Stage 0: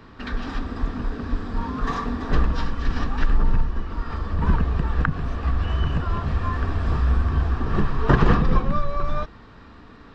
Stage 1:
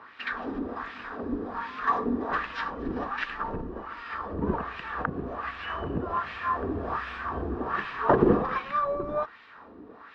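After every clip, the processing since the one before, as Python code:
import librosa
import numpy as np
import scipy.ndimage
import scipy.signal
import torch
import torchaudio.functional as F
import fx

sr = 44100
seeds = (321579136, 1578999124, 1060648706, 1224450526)

y = fx.peak_eq(x, sr, hz=150.0, db=-5.5, octaves=0.22)
y = fx.filter_lfo_bandpass(y, sr, shape='sine', hz=1.3, low_hz=340.0, high_hz=2500.0, q=2.0)
y = y * librosa.db_to_amplitude(6.5)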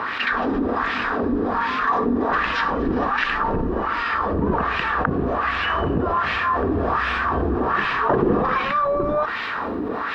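y = fx.env_flatten(x, sr, amount_pct=70)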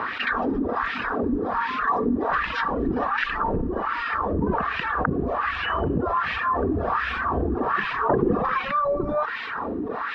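y = fx.dereverb_blind(x, sr, rt60_s=0.95)
y = fx.high_shelf(y, sr, hz=5000.0, db=-9.5)
y = y * librosa.db_to_amplitude(-1.0)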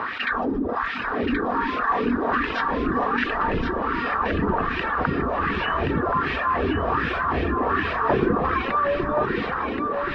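y = fx.echo_feedback(x, sr, ms=1076, feedback_pct=29, wet_db=-5.5)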